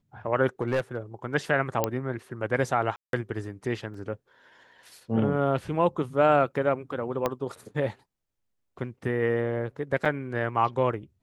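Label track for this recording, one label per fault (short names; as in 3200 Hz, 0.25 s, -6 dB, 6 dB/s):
0.610000	0.960000	clipped -21 dBFS
1.840000	1.840000	pop -9 dBFS
2.960000	3.130000	gap 0.172 s
3.940000	3.940000	gap 4 ms
7.260000	7.260000	pop -12 dBFS
10.050000	10.060000	gap 5.2 ms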